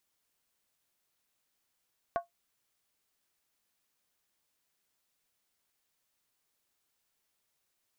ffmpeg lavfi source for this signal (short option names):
-f lavfi -i "aevalsrc='0.0668*pow(10,-3*t/0.14)*sin(2*PI*689*t)+0.0299*pow(10,-3*t/0.111)*sin(2*PI*1098.3*t)+0.0133*pow(10,-3*t/0.096)*sin(2*PI*1471.7*t)+0.00596*pow(10,-3*t/0.092)*sin(2*PI*1581.9*t)+0.00266*pow(10,-3*t/0.086)*sin(2*PI*1827.9*t)':d=0.63:s=44100"